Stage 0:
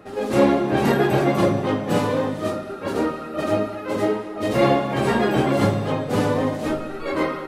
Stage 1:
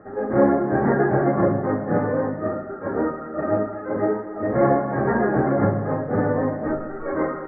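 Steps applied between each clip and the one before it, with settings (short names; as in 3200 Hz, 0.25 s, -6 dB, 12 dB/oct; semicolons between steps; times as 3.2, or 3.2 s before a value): elliptic low-pass 1800 Hz, stop band 40 dB; notch 1000 Hz, Q 11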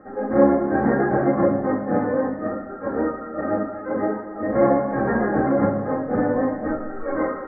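reverb, pre-delay 4 ms, DRR 4.5 dB; gain -1.5 dB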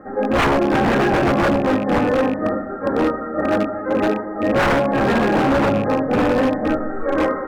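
rattling part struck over -28 dBFS, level -28 dBFS; wavefolder -17 dBFS; gain +6 dB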